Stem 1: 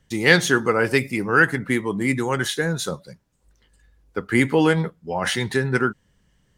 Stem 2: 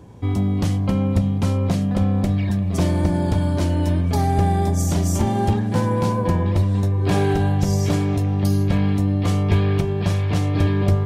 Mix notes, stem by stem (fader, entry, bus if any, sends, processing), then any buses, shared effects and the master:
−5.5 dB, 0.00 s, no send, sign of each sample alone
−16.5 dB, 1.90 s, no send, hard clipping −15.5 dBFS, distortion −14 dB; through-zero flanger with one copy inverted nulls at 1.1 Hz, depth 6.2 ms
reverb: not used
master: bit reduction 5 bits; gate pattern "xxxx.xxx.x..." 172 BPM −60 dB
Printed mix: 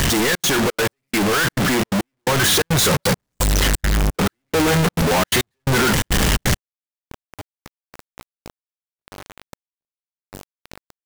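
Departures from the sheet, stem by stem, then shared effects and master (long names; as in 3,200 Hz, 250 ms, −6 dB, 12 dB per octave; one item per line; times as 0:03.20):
stem 1 −5.5 dB → +6.5 dB
stem 2: missing hard clipping −15.5 dBFS, distortion −14 dB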